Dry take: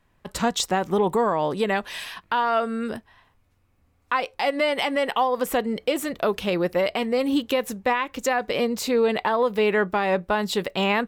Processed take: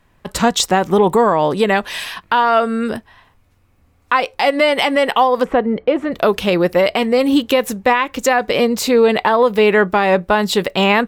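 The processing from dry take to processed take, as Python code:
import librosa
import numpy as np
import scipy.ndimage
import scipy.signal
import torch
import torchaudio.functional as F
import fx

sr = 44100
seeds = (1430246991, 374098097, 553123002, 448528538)

y = fx.lowpass(x, sr, hz=1700.0, slope=12, at=(5.43, 6.11), fade=0.02)
y = F.gain(torch.from_numpy(y), 8.5).numpy()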